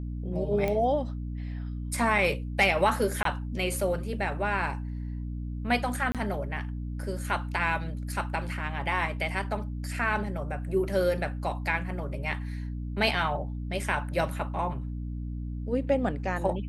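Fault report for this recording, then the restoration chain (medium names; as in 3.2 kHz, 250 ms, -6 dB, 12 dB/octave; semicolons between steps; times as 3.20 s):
hum 60 Hz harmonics 5 -34 dBFS
0.68 s: pop -17 dBFS
3.23–3.25 s: dropout 23 ms
6.12–6.15 s: dropout 27 ms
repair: de-click; de-hum 60 Hz, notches 5; interpolate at 3.23 s, 23 ms; interpolate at 6.12 s, 27 ms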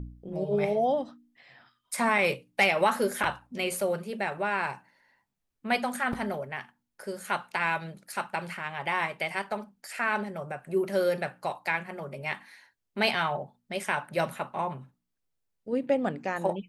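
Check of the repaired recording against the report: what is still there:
nothing left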